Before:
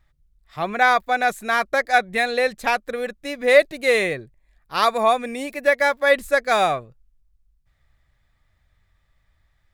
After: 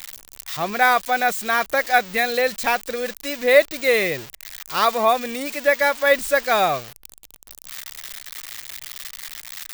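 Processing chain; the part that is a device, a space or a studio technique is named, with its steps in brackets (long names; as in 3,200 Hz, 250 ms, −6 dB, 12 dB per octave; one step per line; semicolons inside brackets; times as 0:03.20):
budget class-D amplifier (gap after every zero crossing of 0.052 ms; spike at every zero crossing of −17 dBFS)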